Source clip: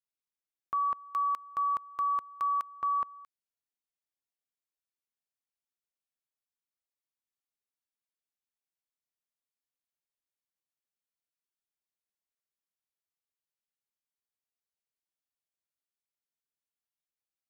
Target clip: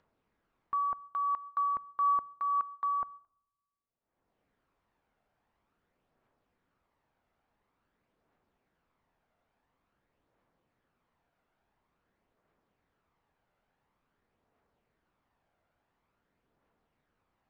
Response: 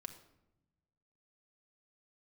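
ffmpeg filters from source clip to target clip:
-filter_complex "[0:a]lowpass=1200,agate=range=-17dB:threshold=-47dB:ratio=16:detection=peak,acompressor=mode=upward:threshold=-49dB:ratio=2.5,aphaser=in_gain=1:out_gain=1:delay=1.5:decay=0.32:speed=0.48:type=triangular,asplit=2[link_01][link_02];[1:a]atrim=start_sample=2205[link_03];[link_02][link_03]afir=irnorm=-1:irlink=0,volume=-9.5dB[link_04];[link_01][link_04]amix=inputs=2:normalize=0"

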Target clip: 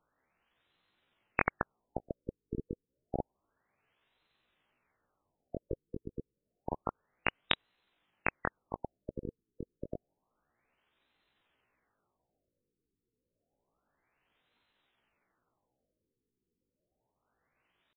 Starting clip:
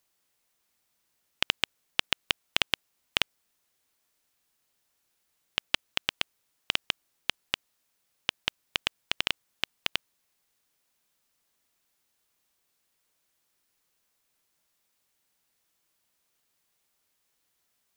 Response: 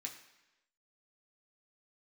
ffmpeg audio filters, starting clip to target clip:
-af "asetrate=68011,aresample=44100,atempo=0.64842,afftfilt=real='re*lt(b*sr/1024,470*pow(4200/470,0.5+0.5*sin(2*PI*0.29*pts/sr)))':imag='im*lt(b*sr/1024,470*pow(4200/470,0.5+0.5*sin(2*PI*0.29*pts/sr)))':win_size=1024:overlap=0.75,volume=8dB"

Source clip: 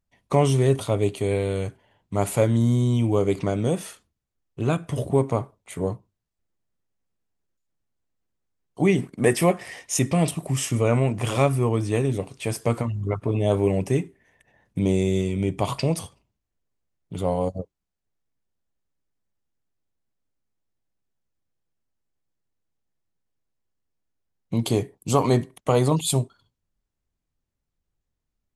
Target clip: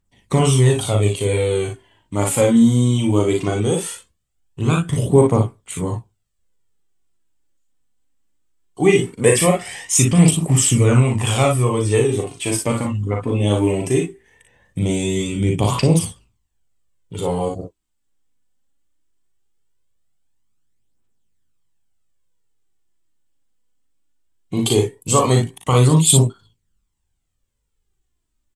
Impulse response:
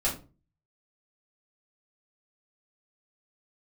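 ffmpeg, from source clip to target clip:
-filter_complex "[0:a]equalizer=frequency=630:width_type=o:width=0.33:gain=-7,equalizer=frequency=3150:width_type=o:width=0.33:gain=5,equalizer=frequency=8000:width_type=o:width=0.33:gain=10,asplit=2[link_01][link_02];[link_02]aecho=0:1:39|57:0.596|0.531[link_03];[link_01][link_03]amix=inputs=2:normalize=0,aphaser=in_gain=1:out_gain=1:delay=4.1:decay=0.46:speed=0.19:type=triangular,volume=3dB"

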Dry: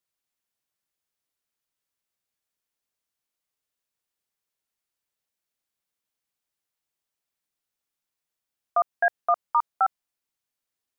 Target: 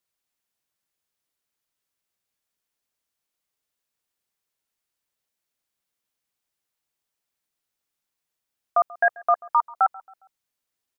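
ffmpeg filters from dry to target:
ffmpeg -i in.wav -filter_complex "[0:a]asplit=2[link_01][link_02];[link_02]adelay=136,lowpass=frequency=1600:poles=1,volume=-21dB,asplit=2[link_03][link_04];[link_04]adelay=136,lowpass=frequency=1600:poles=1,volume=0.48,asplit=2[link_05][link_06];[link_06]adelay=136,lowpass=frequency=1600:poles=1,volume=0.48[link_07];[link_01][link_03][link_05][link_07]amix=inputs=4:normalize=0,volume=2.5dB" out.wav

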